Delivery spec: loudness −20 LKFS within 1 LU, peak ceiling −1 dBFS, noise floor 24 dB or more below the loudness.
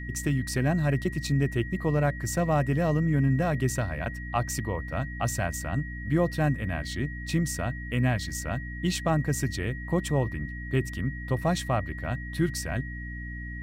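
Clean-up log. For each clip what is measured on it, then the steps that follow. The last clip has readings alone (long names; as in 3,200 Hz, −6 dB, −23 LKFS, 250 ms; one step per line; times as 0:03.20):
mains hum 60 Hz; hum harmonics up to 300 Hz; level of the hum −35 dBFS; interfering tone 1,900 Hz; level of the tone −40 dBFS; integrated loudness −28.5 LKFS; sample peak −13.5 dBFS; target loudness −20.0 LKFS
→ mains-hum notches 60/120/180/240/300 Hz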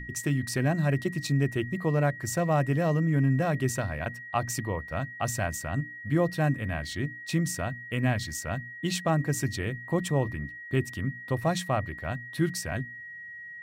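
mains hum none found; interfering tone 1,900 Hz; level of the tone −40 dBFS
→ notch filter 1,900 Hz, Q 30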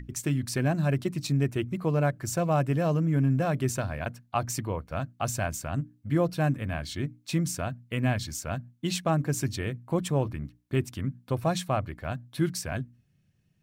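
interfering tone none found; integrated loudness −29.5 LKFS; sample peak −13.5 dBFS; target loudness −20.0 LKFS
→ level +9.5 dB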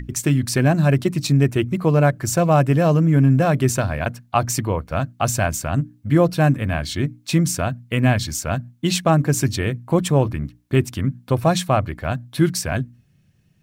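integrated loudness −20.0 LKFS; sample peak −4.0 dBFS; background noise floor −59 dBFS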